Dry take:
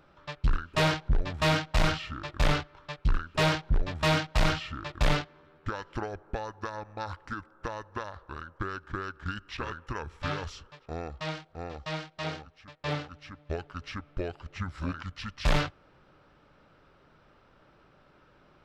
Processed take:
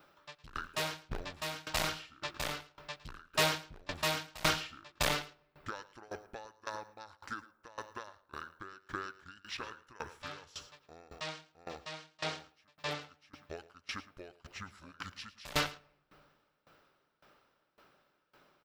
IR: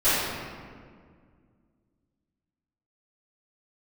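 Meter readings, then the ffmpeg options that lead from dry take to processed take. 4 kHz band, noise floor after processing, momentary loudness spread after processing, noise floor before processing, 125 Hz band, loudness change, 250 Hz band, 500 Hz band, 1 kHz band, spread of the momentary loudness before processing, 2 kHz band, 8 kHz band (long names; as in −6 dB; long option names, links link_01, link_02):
−2.5 dB, −76 dBFS, 18 LU, −62 dBFS, −15.5 dB, −6.5 dB, −12.0 dB, −8.0 dB, −6.5 dB, 14 LU, −5.0 dB, +2.0 dB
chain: -filter_complex "[0:a]aemphasis=mode=production:type=bsi,aecho=1:1:110:0.211,asplit=2[link_01][link_02];[1:a]atrim=start_sample=2205[link_03];[link_02][link_03]afir=irnorm=-1:irlink=0,volume=-38.5dB[link_04];[link_01][link_04]amix=inputs=2:normalize=0,aeval=exprs='val(0)*pow(10,-22*if(lt(mod(1.8*n/s,1),2*abs(1.8)/1000),1-mod(1.8*n/s,1)/(2*abs(1.8)/1000),(mod(1.8*n/s,1)-2*abs(1.8)/1000)/(1-2*abs(1.8)/1000))/20)':channel_layout=same"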